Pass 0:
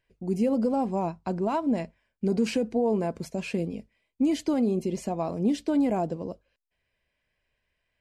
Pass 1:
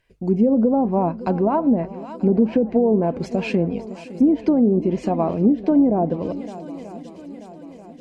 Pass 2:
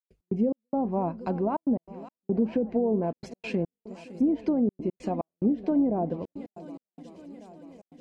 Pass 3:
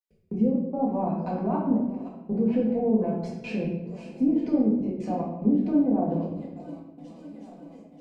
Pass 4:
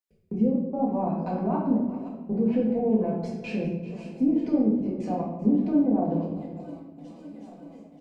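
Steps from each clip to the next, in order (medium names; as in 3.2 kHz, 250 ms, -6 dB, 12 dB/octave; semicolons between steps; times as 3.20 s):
shuffle delay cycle 936 ms, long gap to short 1.5:1, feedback 49%, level -17 dB; low-pass that closes with the level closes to 580 Hz, closed at -20.5 dBFS; trim +8.5 dB
trance gate ".x.xx..xxxxxxxx" 144 bpm -60 dB; trim -8 dB
simulated room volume 330 m³, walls mixed, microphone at 1.9 m; trim -5.5 dB
delay 389 ms -16.5 dB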